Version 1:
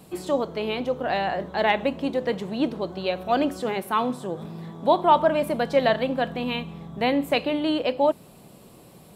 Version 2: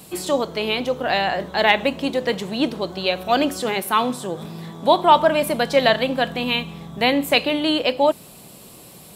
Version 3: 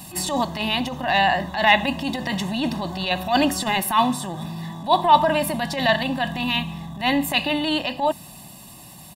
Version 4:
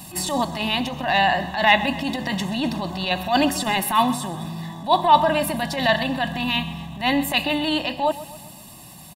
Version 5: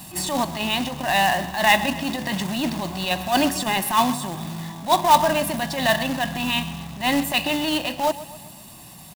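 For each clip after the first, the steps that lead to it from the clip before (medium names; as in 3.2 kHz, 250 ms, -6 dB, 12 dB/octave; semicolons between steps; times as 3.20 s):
treble shelf 2.1 kHz +10.5 dB; trim +2.5 dB
transient shaper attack -11 dB, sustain +1 dB; gain riding within 4 dB 2 s; comb 1.1 ms, depth 89%; trim -1 dB
feedback delay 129 ms, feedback 51%, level -16 dB
companded quantiser 4-bit; trim -1 dB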